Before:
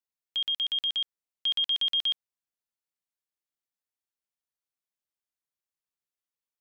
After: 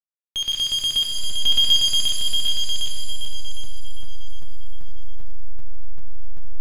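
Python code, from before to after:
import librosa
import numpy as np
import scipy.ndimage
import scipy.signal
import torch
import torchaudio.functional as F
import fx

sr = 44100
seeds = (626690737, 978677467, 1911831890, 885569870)

y = fx.diode_clip(x, sr, knee_db=-30.5)
y = fx.backlash(y, sr, play_db=-40.0)
y = fx.comb(y, sr, ms=4.4, depth=0.89, at=(0.95, 1.74))
y = fx.echo_feedback(y, sr, ms=757, feedback_pct=29, wet_db=-5.5)
y = fx.buffer_crackle(y, sr, first_s=0.52, period_s=0.39, block=512, kind='zero')
y = fx.rev_shimmer(y, sr, seeds[0], rt60_s=1.2, semitones=7, shimmer_db=-2, drr_db=2.0)
y = y * 10.0 ** (6.0 / 20.0)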